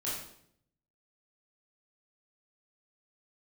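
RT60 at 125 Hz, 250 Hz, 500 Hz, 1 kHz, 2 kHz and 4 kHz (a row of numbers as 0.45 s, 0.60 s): 1.0 s, 0.85 s, 0.75 s, 0.60 s, 0.60 s, 0.55 s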